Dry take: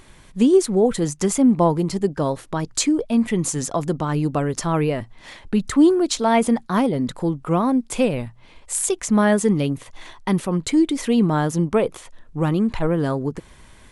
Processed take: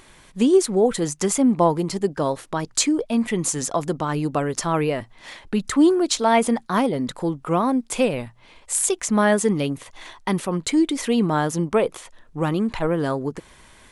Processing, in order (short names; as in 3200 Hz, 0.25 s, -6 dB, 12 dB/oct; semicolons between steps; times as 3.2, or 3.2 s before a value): low shelf 250 Hz -8 dB; gain +1.5 dB